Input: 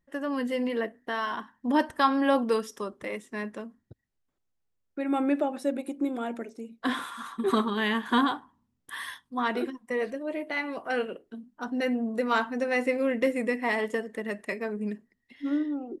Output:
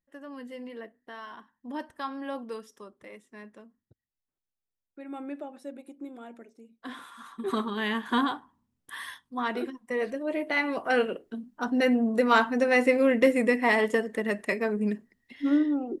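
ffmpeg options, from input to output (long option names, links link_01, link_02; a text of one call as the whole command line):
ffmpeg -i in.wav -af "volume=4.5dB,afade=type=in:start_time=6.89:duration=1.02:silence=0.316228,afade=type=in:start_time=9.8:duration=0.83:silence=0.473151" out.wav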